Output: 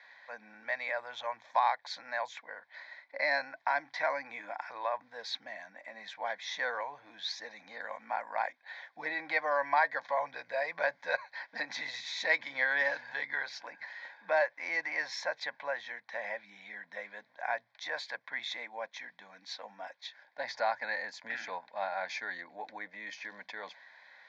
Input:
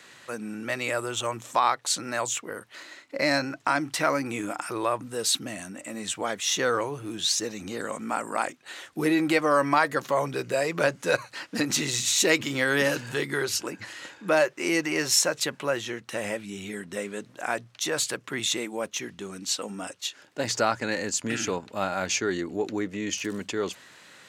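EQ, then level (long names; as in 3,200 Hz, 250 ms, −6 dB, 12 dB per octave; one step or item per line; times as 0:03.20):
band-pass filter 710–2,600 Hz
high-frequency loss of the air 52 metres
phaser with its sweep stopped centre 1,900 Hz, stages 8
0.0 dB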